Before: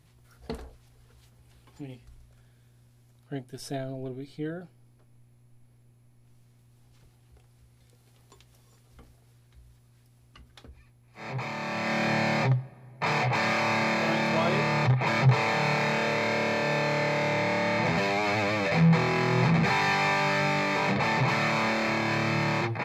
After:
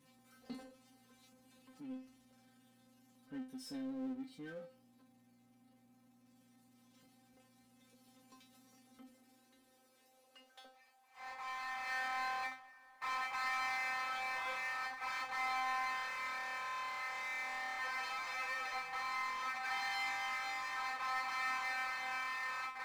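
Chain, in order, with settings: high-pass sweep 190 Hz -> 1.1 kHz, 8.75–11.51 s; feedback comb 260 Hz, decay 0.26 s, harmonics all, mix 100%; power-law waveshaper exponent 0.7; trim -5.5 dB

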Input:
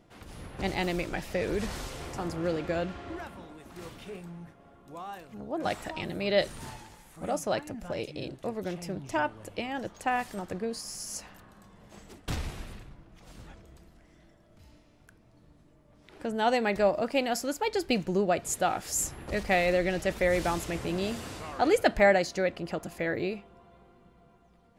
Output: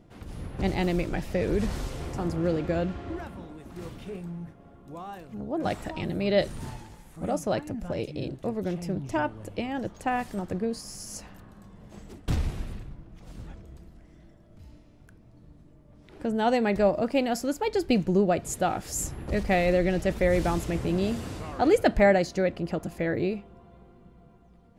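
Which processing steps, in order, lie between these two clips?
bass shelf 450 Hz +10 dB; trim -2 dB

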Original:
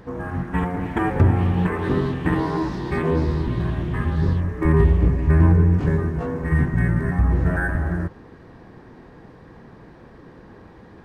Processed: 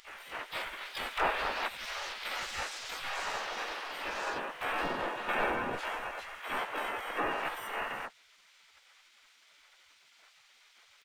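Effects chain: spectral gate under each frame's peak -25 dB weak; dynamic bell 860 Hz, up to +4 dB, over -52 dBFS, Q 4.2; harmony voices -7 st -8 dB, -3 st -10 dB, +7 st -1 dB; in parallel at +1 dB: gain riding within 4 dB 2 s; on the sum: trim -6.5 dB

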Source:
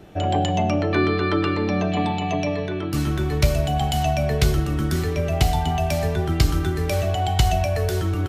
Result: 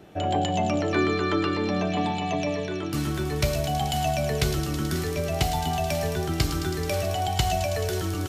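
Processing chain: bass shelf 71 Hz -11.5 dB; on a send: feedback echo behind a high-pass 108 ms, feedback 84%, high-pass 4.1 kHz, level -6 dB; on the sum: trim -2.5 dB

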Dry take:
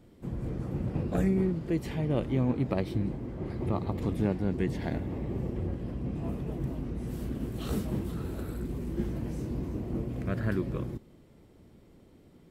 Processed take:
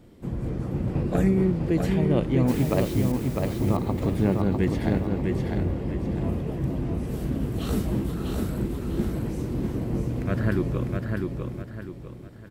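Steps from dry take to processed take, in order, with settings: 2.48–3.12 s: word length cut 8-bit, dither triangular; feedback delay 651 ms, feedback 36%, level -4 dB; trim +5 dB

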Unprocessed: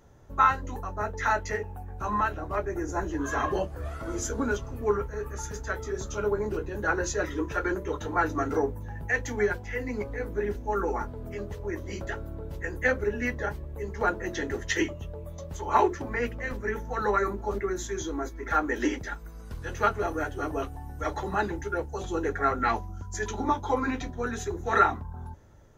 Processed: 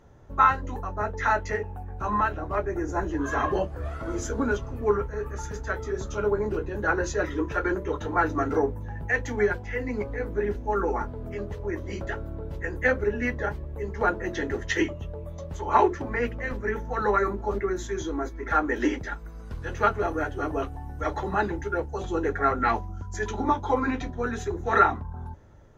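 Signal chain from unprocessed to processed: treble shelf 5.8 kHz -11.5 dB; trim +2.5 dB

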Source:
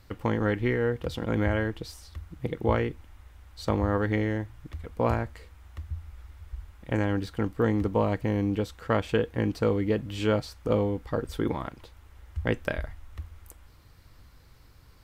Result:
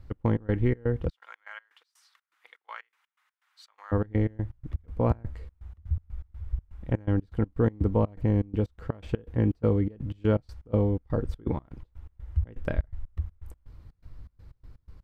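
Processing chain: 1.09–3.92 s: high-pass 1.2 kHz 24 dB/octave; tilt EQ -3 dB/octave; trance gate "x.x.xx.xx.x." 123 bpm -24 dB; trim -4 dB

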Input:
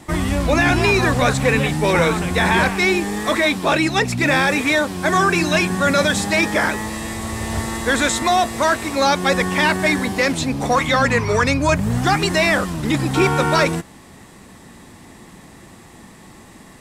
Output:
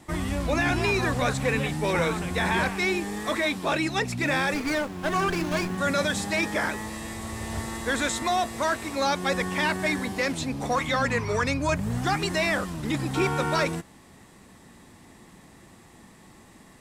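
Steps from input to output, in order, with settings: 4.54–5.78 s: sliding maximum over 9 samples; trim -8.5 dB

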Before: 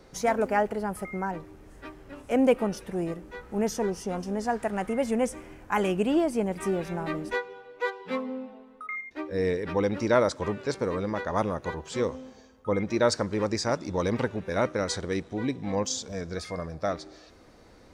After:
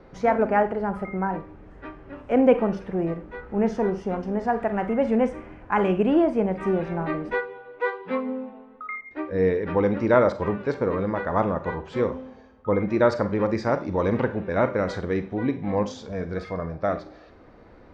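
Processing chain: low-pass 2.1 kHz 12 dB/octave; Schroeder reverb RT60 0.3 s, combs from 32 ms, DRR 10 dB; trim +4 dB

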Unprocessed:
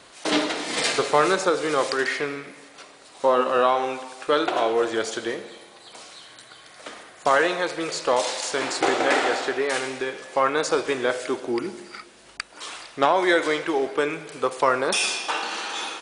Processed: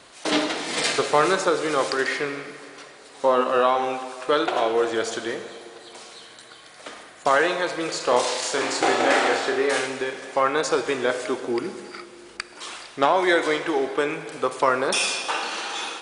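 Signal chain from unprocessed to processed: 7.97–9.86 s: flutter echo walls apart 5.6 m, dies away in 0.32 s; on a send at -12.5 dB: reverberation RT60 3.5 s, pre-delay 5 ms

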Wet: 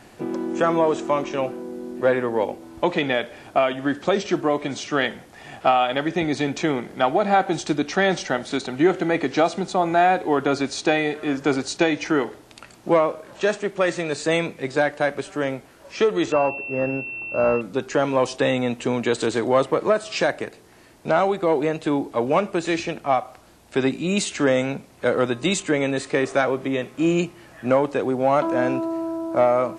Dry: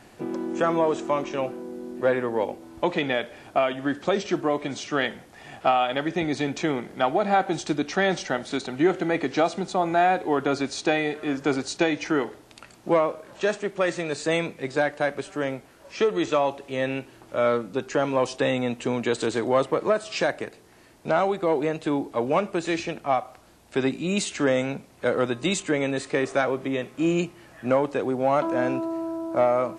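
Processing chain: 16.32–17.61 s: class-D stage that switches slowly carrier 2.7 kHz; trim +3 dB

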